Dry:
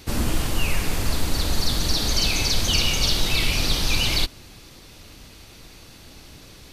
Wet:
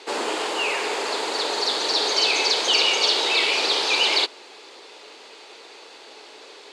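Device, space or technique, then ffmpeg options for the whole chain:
phone speaker on a table: -af "highpass=frequency=400:width=0.5412,highpass=frequency=400:width=1.3066,equalizer=frequency=420:width_type=q:width=4:gain=8,equalizer=frequency=890:width_type=q:width=4:gain=6,equalizer=frequency=5800:width_type=q:width=4:gain=-8,lowpass=frequency=7300:width=0.5412,lowpass=frequency=7300:width=1.3066,volume=4.5dB"

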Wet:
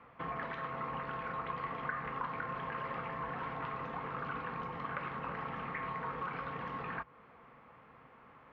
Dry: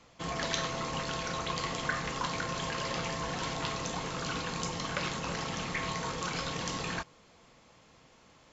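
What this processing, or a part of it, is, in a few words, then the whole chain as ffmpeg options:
bass amplifier: -af "acompressor=threshold=-41dB:ratio=3,highpass=61,equalizer=frequency=69:width_type=q:width=4:gain=-7,equalizer=frequency=100:width_type=q:width=4:gain=-7,equalizer=frequency=180:width_type=q:width=4:gain=-6,equalizer=frequency=330:width_type=q:width=4:gain=-7,equalizer=frequency=610:width_type=q:width=4:gain=-5,equalizer=frequency=1200:width_type=q:width=4:gain=5,lowpass=frequency=2100:width=0.5412,lowpass=frequency=2100:width=1.3066,volume=3.5dB"

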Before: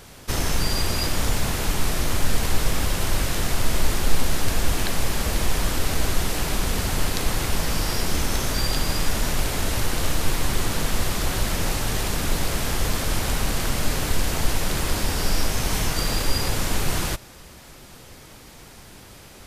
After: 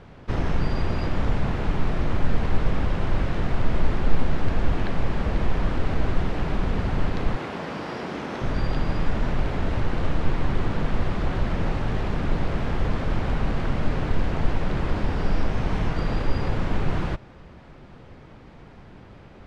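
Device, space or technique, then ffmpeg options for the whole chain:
phone in a pocket: -filter_complex "[0:a]asettb=1/sr,asplit=3[link_01][link_02][link_03];[link_01]atrim=end=7.364[link_04];[link_02]atrim=start=7.36:end=8.42,asetpts=PTS-STARTPTS,afade=type=in:duration=0.004:curve=qsin,afade=type=out:start_time=1.056:duration=0.004:curve=qsin,highpass=240[link_05];[link_03]atrim=start=8.416[link_06];[link_04][link_05]acrossfade=duration=0.004:curve1=hsin:curve2=qsin[link_07];[link_07][link_06]acrossfade=duration=0.004:curve1=qsin:curve2=hsin,lowpass=3200,equalizer=frequency=160:width_type=o:width=1.3:gain=3,highshelf=frequency=2400:gain=-12"

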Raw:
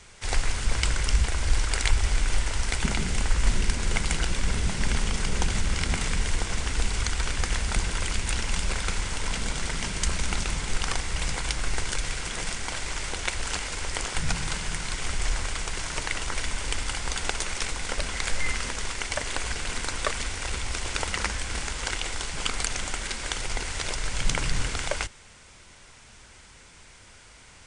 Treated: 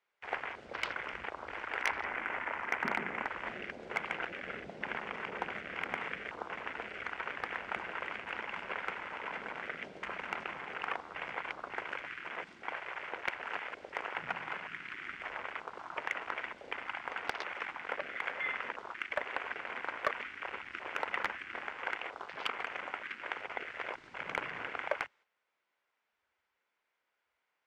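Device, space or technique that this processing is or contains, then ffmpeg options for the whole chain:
walkie-talkie: -filter_complex "[0:a]afwtdn=0.0224,asettb=1/sr,asplit=3[link_01][link_02][link_03];[link_01]atrim=end=1.824[link_04];[link_02]atrim=start=1.82:end=3.27,asetpts=PTS-STARTPTS,afade=type=in:duration=0.004:curve=qsin,afade=type=out:start_time=1.446:duration=0.004:curve=qsin,equalizer=frequency=250:width_type=o:width=1:gain=5,equalizer=frequency=1000:width_type=o:width=1:gain=4,equalizer=frequency=2000:width_type=o:width=1:gain=5,equalizer=frequency=4000:width_type=o:width=1:gain=-6[link_05];[link_03]atrim=start=3.266[link_06];[link_04][link_05]acrossfade=duration=0.004:curve1=hsin:curve2=qsin[link_07];[link_07][link_06]acrossfade=duration=0.004:curve1=qsin:curve2=hsin,highpass=490,lowpass=2400,asoftclip=type=hard:threshold=-18.5dB,agate=range=-9dB:threshold=-59dB:ratio=16:detection=peak,volume=-1.5dB"

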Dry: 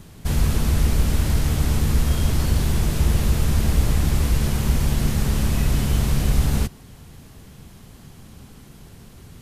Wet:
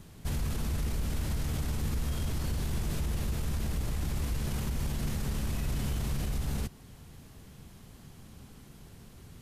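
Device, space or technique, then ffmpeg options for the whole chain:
stacked limiters: -af "alimiter=limit=-12.5dB:level=0:latency=1:release=267,alimiter=limit=-17.5dB:level=0:latency=1:release=12,volume=-7dB"

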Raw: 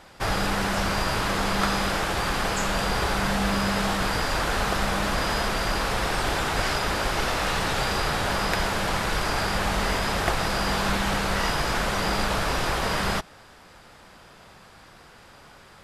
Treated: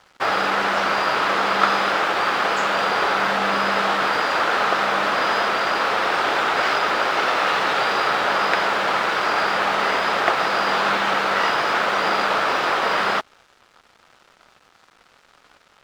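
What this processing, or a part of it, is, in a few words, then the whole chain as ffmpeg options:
pocket radio on a weak battery: -af "highpass=380,lowpass=3700,aeval=exprs='sgn(val(0))*max(abs(val(0))-0.00335,0)':channel_layout=same,equalizer=frequency=1300:width_type=o:width=0.27:gain=4.5,volume=7dB"

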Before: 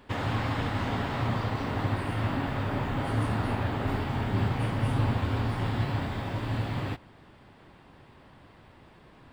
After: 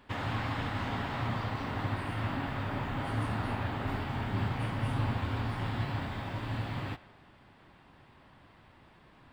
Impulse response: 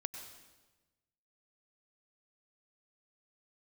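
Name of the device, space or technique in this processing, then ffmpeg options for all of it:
filtered reverb send: -filter_complex "[0:a]asplit=2[link_01][link_02];[link_02]highpass=frequency=420:width=0.5412,highpass=frequency=420:width=1.3066,lowpass=5000[link_03];[1:a]atrim=start_sample=2205[link_04];[link_03][link_04]afir=irnorm=-1:irlink=0,volume=-7.5dB[link_05];[link_01][link_05]amix=inputs=2:normalize=0,volume=-5dB"

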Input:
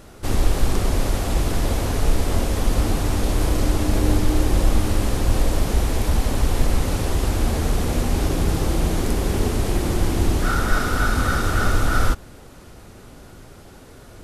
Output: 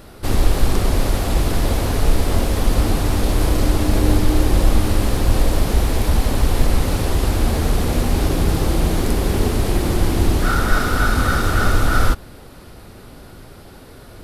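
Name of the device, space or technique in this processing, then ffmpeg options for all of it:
exciter from parts: -filter_complex "[0:a]asplit=2[link_01][link_02];[link_02]highpass=frequency=3500:width=0.5412,highpass=frequency=3500:width=1.3066,asoftclip=type=tanh:threshold=-39.5dB,highpass=frequency=4400:width=0.5412,highpass=frequency=4400:width=1.3066,volume=-5.5dB[link_03];[link_01][link_03]amix=inputs=2:normalize=0,volume=3dB"

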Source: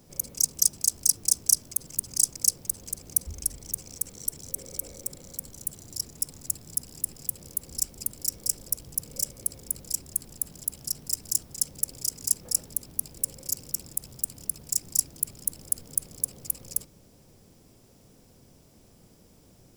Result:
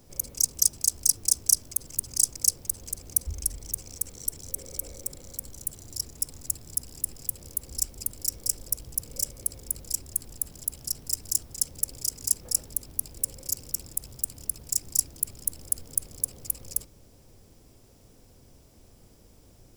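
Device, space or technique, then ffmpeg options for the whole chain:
low shelf boost with a cut just above: -af "lowshelf=frequency=96:gain=8,equalizer=frequency=170:width_type=o:width=0.88:gain=-6"

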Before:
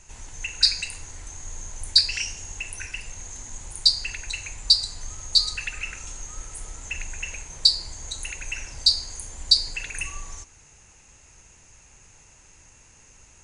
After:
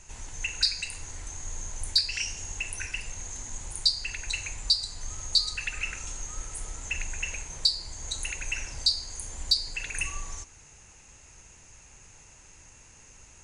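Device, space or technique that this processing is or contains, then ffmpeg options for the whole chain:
clipper into limiter: -af "asoftclip=type=hard:threshold=-3dB,alimiter=limit=-10dB:level=0:latency=1:release=460"

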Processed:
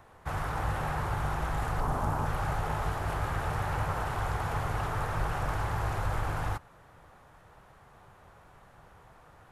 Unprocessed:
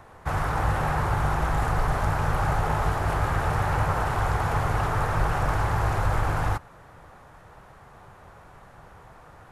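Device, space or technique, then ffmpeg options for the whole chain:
presence and air boost: -filter_complex "[0:a]equalizer=frequency=3200:width_type=o:width=0.77:gain=2.5,highshelf=frequency=11000:gain=5,asettb=1/sr,asplit=3[link_01][link_02][link_03];[link_01]atrim=end=1.804[link_04];[link_02]atrim=start=1.8:end=2.26,asetpts=PTS-STARTPTS,afade=type=in:duration=0.004:curve=qsin,afade=type=out:start_time=0.456:duration=0.004:curve=qsin,equalizer=frequency=250:width_type=o:width=1:gain=8,equalizer=frequency=1000:width_type=o:width=1:gain=5,equalizer=frequency=2000:width_type=o:width=1:gain=-6,equalizer=frequency=4000:width_type=o:width=1:gain=-4[link_05];[link_03]atrim=start=2.256[link_06];[link_04][link_05]acrossfade=duration=0.004:curve1=hsin:curve2=qsin[link_07];[link_07][link_06]acrossfade=duration=0.004:curve1=qsin:curve2=hsin,volume=-7dB"

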